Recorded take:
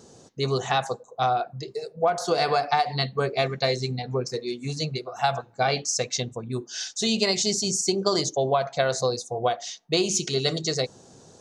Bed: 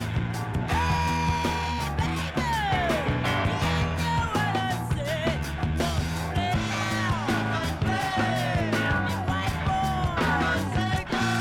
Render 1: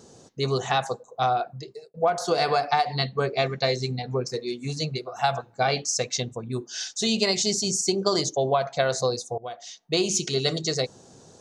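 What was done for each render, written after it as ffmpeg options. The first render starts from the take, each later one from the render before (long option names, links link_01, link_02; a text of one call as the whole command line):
ffmpeg -i in.wav -filter_complex "[0:a]asettb=1/sr,asplit=3[link_01][link_02][link_03];[link_01]atrim=end=2.854[link_04];[link_02]atrim=start=2.85:end=3.8,asetpts=PTS-STARTPTS,afade=type=in:duration=0.004:curve=qsin,afade=type=out:start_time=0.946:duration=0.004:curve=qsin,lowpass=frequency=8000:width=0.5412,lowpass=frequency=8000:width=1.3066[link_05];[link_03]atrim=start=3.796[link_06];[link_04][link_05]acrossfade=duration=0.004:curve1=hsin:curve2=qsin[link_07];[link_07][link_06]acrossfade=duration=0.004:curve1=qsin:curve2=hsin,asplit=3[link_08][link_09][link_10];[link_08]atrim=end=1.94,asetpts=PTS-STARTPTS,afade=type=out:start_time=1.48:duration=0.46[link_11];[link_09]atrim=start=1.94:end=9.38,asetpts=PTS-STARTPTS,afade=type=in:duration=0.004:curve=hsin,afade=type=out:start_time=7.436:duration=0.004:curve=hsin:silence=0.11885[link_12];[link_10]atrim=start=9.38,asetpts=PTS-STARTPTS,afade=type=in:duration=0.65:silence=0.11885[link_13];[link_11][link_12][link_13]concat=n=3:v=0:a=1" out.wav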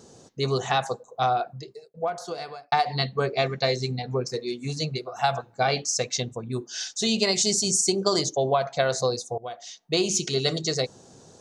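ffmpeg -i in.wav -filter_complex "[0:a]asettb=1/sr,asplit=3[link_01][link_02][link_03];[link_01]atrim=end=7.354[link_04];[link_02]atrim=start=7.35:end=8.19,asetpts=PTS-STARTPTS,afade=type=in:duration=0.004:curve=qsin,afade=type=out:start_time=0.836:duration=0.004:curve=qsin,equalizer=frequency=9200:width_type=o:width=0.67:gain=8[link_05];[link_03]atrim=start=8.186[link_06];[link_04][link_05]acrossfade=duration=0.004:curve1=hsin:curve2=qsin[link_07];[link_07][link_06]acrossfade=duration=0.004:curve1=qsin:curve2=hsin,asplit=2[link_08][link_09];[link_08]atrim=end=2.72,asetpts=PTS-STARTPTS,afade=type=out:start_time=1.49:duration=1.23[link_10];[link_09]atrim=start=2.72,asetpts=PTS-STARTPTS,afade=type=in:duration=0.004:curve=hsin[link_11];[link_10][link_11]concat=n=2:v=0:a=1" out.wav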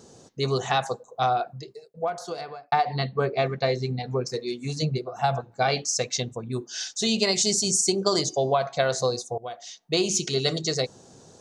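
ffmpeg -i in.wav -filter_complex "[0:a]asettb=1/sr,asplit=3[link_01][link_02][link_03];[link_01]atrim=end=2.414[link_04];[link_02]atrim=start=2.41:end=4,asetpts=PTS-STARTPTS,afade=type=in:duration=0.004:curve=qsin,afade=type=out:start_time=1.586:duration=0.004:curve=qsin,aemphasis=mode=reproduction:type=75fm[link_05];[link_03]atrim=start=3.996[link_06];[link_04][link_05]acrossfade=duration=0.004:curve1=hsin:curve2=qsin[link_07];[link_07][link_06]acrossfade=duration=0.004:curve1=qsin:curve2=hsin,asettb=1/sr,asplit=3[link_08][link_09][link_10];[link_08]atrim=end=4.824[link_11];[link_09]atrim=start=4.82:end=5.52,asetpts=PTS-STARTPTS,afade=type=in:duration=0.004:curve=qsin,afade=type=out:start_time=0.696:duration=0.004:curve=qsin,tiltshelf=frequency=720:gain=5.5[link_12];[link_10]atrim=start=5.516[link_13];[link_11][link_12]acrossfade=duration=0.004:curve1=hsin:curve2=qsin[link_14];[link_14][link_13]acrossfade=duration=0.004:curve1=qsin:curve2=hsin,asplit=3[link_15][link_16][link_17];[link_15]afade=type=out:start_time=8.27:duration=0.02[link_18];[link_16]bandreject=frequency=369.6:width_type=h:width=4,bandreject=frequency=739.2:width_type=h:width=4,bandreject=frequency=1108.8:width_type=h:width=4,bandreject=frequency=1478.4:width_type=h:width=4,bandreject=frequency=1848:width_type=h:width=4,bandreject=frequency=2217.6:width_type=h:width=4,bandreject=frequency=2587.2:width_type=h:width=4,bandreject=frequency=2956.8:width_type=h:width=4,bandreject=frequency=3326.4:width_type=h:width=4,bandreject=frequency=3696:width_type=h:width=4,bandreject=frequency=4065.6:width_type=h:width=4,bandreject=frequency=4435.2:width_type=h:width=4,bandreject=frequency=4804.8:width_type=h:width=4,bandreject=frequency=5174.4:width_type=h:width=4,bandreject=frequency=5544:width_type=h:width=4,bandreject=frequency=5913.6:width_type=h:width=4,bandreject=frequency=6283.2:width_type=h:width=4,bandreject=frequency=6652.8:width_type=h:width=4,bandreject=frequency=7022.4:width_type=h:width=4,bandreject=frequency=7392:width_type=h:width=4,bandreject=frequency=7761.6:width_type=h:width=4,bandreject=frequency=8131.2:width_type=h:width=4,bandreject=frequency=8500.8:width_type=h:width=4,bandreject=frequency=8870.4:width_type=h:width=4,bandreject=frequency=9240:width_type=h:width=4,bandreject=frequency=9609.6:width_type=h:width=4,bandreject=frequency=9979.2:width_type=h:width=4,bandreject=frequency=10348.8:width_type=h:width=4,bandreject=frequency=10718.4:width_type=h:width=4,bandreject=frequency=11088:width_type=h:width=4,bandreject=frequency=11457.6:width_type=h:width=4,bandreject=frequency=11827.2:width_type=h:width=4,bandreject=frequency=12196.8:width_type=h:width=4,bandreject=frequency=12566.4:width_type=h:width=4,bandreject=frequency=12936:width_type=h:width=4,afade=type=in:start_time=8.27:duration=0.02,afade=type=out:start_time=9.21:duration=0.02[link_19];[link_17]afade=type=in:start_time=9.21:duration=0.02[link_20];[link_18][link_19][link_20]amix=inputs=3:normalize=0" out.wav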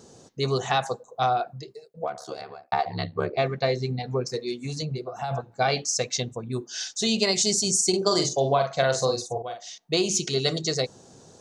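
ffmpeg -i in.wav -filter_complex "[0:a]asplit=3[link_01][link_02][link_03];[link_01]afade=type=out:start_time=2.02:duration=0.02[link_04];[link_02]aeval=exprs='val(0)*sin(2*PI*35*n/s)':channel_layout=same,afade=type=in:start_time=2.02:duration=0.02,afade=type=out:start_time=3.36:duration=0.02[link_05];[link_03]afade=type=in:start_time=3.36:duration=0.02[link_06];[link_04][link_05][link_06]amix=inputs=3:normalize=0,asplit=3[link_07][link_08][link_09];[link_07]afade=type=out:start_time=4.57:duration=0.02[link_10];[link_08]acompressor=threshold=-26dB:ratio=6:attack=3.2:release=140:knee=1:detection=peak,afade=type=in:start_time=4.57:duration=0.02,afade=type=out:start_time=5.3:duration=0.02[link_11];[link_09]afade=type=in:start_time=5.3:duration=0.02[link_12];[link_10][link_11][link_12]amix=inputs=3:normalize=0,asettb=1/sr,asplit=3[link_13][link_14][link_15];[link_13]atrim=end=7.894[link_16];[link_14]atrim=start=7.89:end=9.78,asetpts=PTS-STARTPTS,afade=type=in:duration=0.004:curve=qsin,afade=type=out:start_time=1.886:duration=0.004:curve=qsin,asplit=2[link_17][link_18];[link_18]adelay=44,volume=-6dB[link_19];[link_17][link_19]amix=inputs=2:normalize=0,atrim=end_sample=83349[link_20];[link_15]atrim=start=9.776[link_21];[link_16][link_20]acrossfade=duration=0.004:curve1=hsin:curve2=qsin[link_22];[link_22][link_21]acrossfade=duration=0.004:curve1=qsin:curve2=hsin" out.wav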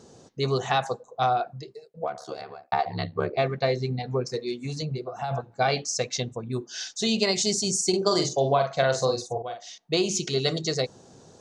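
ffmpeg -i in.wav -af "highshelf=frequency=8500:gain=-10" out.wav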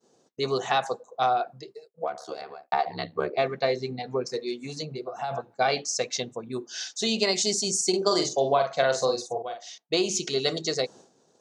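ffmpeg -i in.wav -af "highpass=230,agate=range=-33dB:threshold=-44dB:ratio=3:detection=peak" out.wav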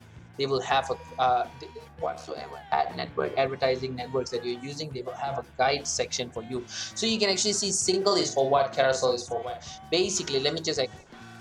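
ffmpeg -i in.wav -i bed.wav -filter_complex "[1:a]volume=-21dB[link_01];[0:a][link_01]amix=inputs=2:normalize=0" out.wav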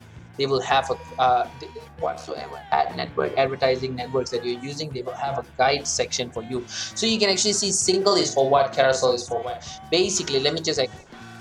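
ffmpeg -i in.wav -af "volume=4.5dB" out.wav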